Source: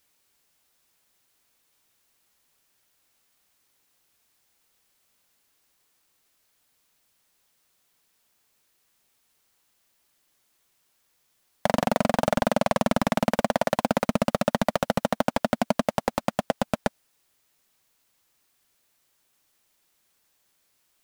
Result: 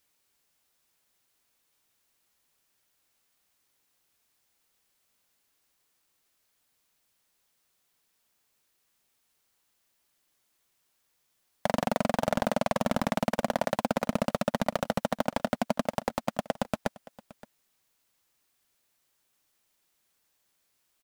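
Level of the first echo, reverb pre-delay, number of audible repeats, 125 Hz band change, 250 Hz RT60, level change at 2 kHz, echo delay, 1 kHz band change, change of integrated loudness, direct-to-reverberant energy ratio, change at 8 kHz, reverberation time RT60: −20.5 dB, no reverb audible, 1, −4.5 dB, no reverb audible, −4.5 dB, 571 ms, −4.5 dB, −4.5 dB, no reverb audible, −4.5 dB, no reverb audible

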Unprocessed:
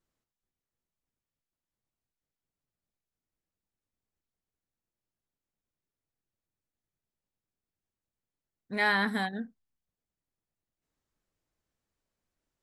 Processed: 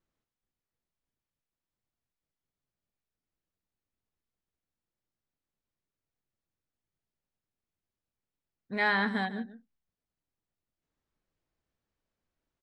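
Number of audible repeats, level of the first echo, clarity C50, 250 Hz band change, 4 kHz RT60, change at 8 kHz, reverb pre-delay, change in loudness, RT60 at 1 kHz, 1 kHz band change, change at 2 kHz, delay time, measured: 1, −15.0 dB, no reverb audible, 0.0 dB, no reverb audible, below −10 dB, no reverb audible, −1.0 dB, no reverb audible, −0.5 dB, −0.5 dB, 147 ms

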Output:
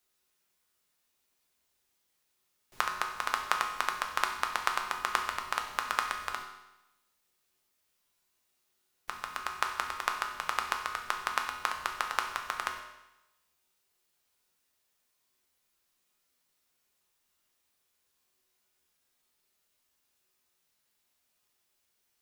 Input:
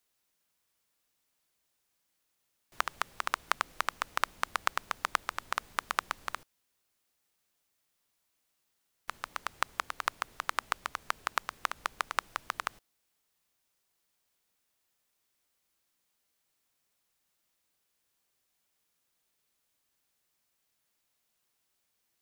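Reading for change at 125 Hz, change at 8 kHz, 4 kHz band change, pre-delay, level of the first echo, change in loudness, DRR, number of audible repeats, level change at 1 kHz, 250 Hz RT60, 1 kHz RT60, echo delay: can't be measured, +2.0 dB, +2.0 dB, 5 ms, no echo audible, +2.0 dB, 2.0 dB, no echo audible, +2.5 dB, 0.95 s, 0.95 s, no echo audible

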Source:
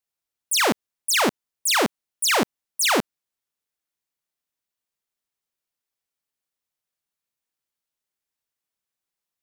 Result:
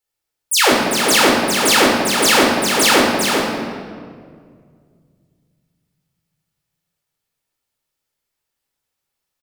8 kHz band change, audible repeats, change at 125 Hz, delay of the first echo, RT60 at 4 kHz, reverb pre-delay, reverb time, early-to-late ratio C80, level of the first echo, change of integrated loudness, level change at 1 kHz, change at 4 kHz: +7.5 dB, 1, +10.0 dB, 397 ms, 1.3 s, 14 ms, 2.0 s, 0.5 dB, −5.5 dB, +8.0 dB, +9.0 dB, +9.0 dB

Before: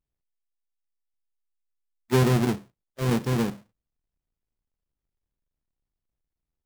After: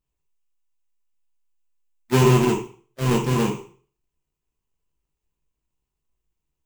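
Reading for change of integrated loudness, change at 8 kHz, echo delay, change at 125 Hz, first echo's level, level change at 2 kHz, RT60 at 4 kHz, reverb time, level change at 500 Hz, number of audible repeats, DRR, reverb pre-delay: +4.5 dB, +6.5 dB, no echo audible, +4.0 dB, no echo audible, +4.0 dB, 0.40 s, 0.45 s, +5.5 dB, no echo audible, −1.5 dB, 6 ms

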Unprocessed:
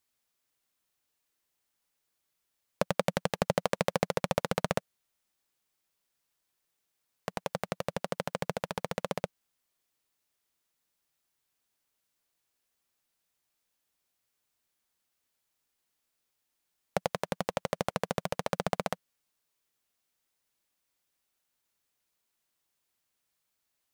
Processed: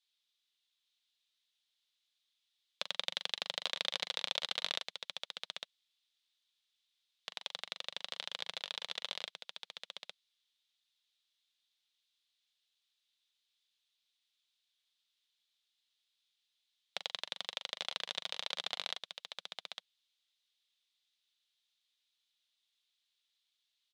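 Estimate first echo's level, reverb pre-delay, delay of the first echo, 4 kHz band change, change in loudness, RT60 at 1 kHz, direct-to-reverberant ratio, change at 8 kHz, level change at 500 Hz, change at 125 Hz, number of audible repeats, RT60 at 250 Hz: −10.0 dB, no reverb audible, 41 ms, +7.0 dB, −6.0 dB, no reverb audible, no reverb audible, −6.0 dB, −19.0 dB, below −25 dB, 2, no reverb audible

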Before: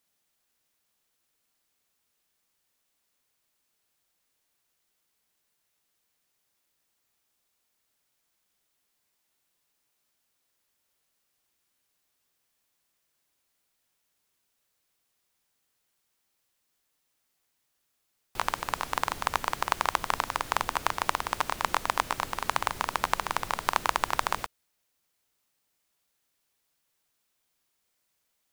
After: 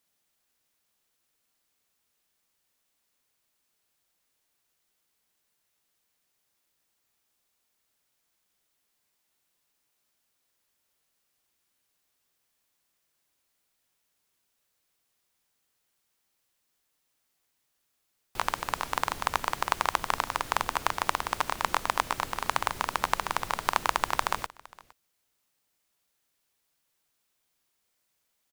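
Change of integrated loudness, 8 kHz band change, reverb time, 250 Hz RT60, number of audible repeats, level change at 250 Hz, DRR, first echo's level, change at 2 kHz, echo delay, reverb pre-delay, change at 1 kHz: 0.0 dB, 0.0 dB, no reverb audible, no reverb audible, 1, 0.0 dB, no reverb audible, −23.0 dB, 0.0 dB, 462 ms, no reverb audible, 0.0 dB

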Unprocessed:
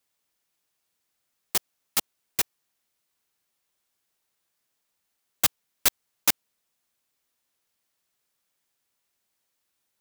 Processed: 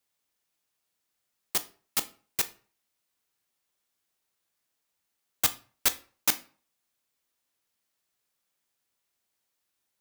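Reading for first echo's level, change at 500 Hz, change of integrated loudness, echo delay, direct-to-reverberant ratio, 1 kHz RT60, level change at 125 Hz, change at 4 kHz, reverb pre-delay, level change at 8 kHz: no echo audible, −2.5 dB, −2.5 dB, no echo audible, 11.0 dB, 0.45 s, −3.0 dB, −3.0 dB, 16 ms, −2.5 dB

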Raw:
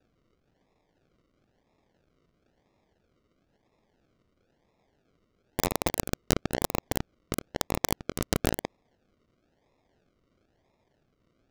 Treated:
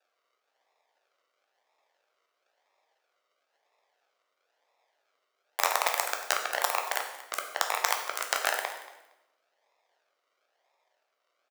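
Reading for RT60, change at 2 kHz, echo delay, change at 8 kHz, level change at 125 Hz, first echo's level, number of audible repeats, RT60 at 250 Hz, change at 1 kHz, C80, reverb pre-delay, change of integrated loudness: 1.0 s, +8.0 dB, 231 ms, +2.0 dB, below −40 dB, −18.0 dB, 2, 1.3 s, +6.0 dB, 8.5 dB, 9 ms, +2.0 dB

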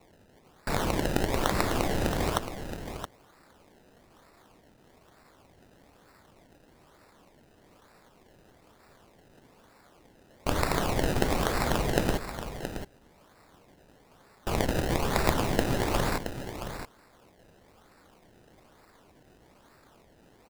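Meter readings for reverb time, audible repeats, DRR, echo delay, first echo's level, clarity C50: no reverb audible, 1, no reverb audible, 672 ms, −9.5 dB, no reverb audible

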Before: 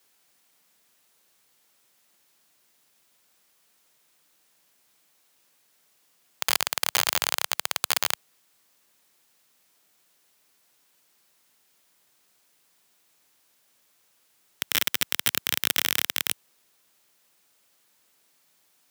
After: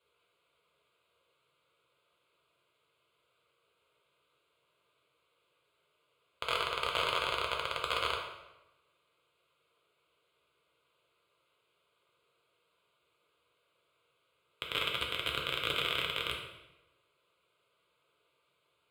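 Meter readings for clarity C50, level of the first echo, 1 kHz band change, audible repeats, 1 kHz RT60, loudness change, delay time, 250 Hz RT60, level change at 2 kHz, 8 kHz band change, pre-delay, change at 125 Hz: 4.0 dB, no echo audible, −1.0 dB, no echo audible, 1.0 s, −8.5 dB, no echo audible, 1.1 s, −5.5 dB, −22.5 dB, 3 ms, −1.0 dB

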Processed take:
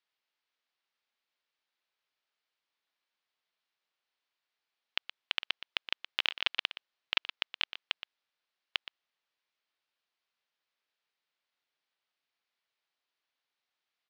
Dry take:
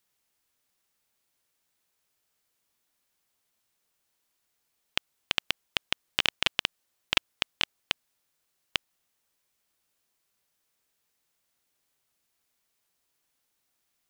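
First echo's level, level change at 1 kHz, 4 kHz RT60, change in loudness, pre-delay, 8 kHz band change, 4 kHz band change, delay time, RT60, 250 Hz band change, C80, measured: −13.0 dB, −5.5 dB, no reverb audible, −4.0 dB, no reverb audible, below −15 dB, −4.0 dB, 120 ms, no reverb audible, −14.0 dB, no reverb audible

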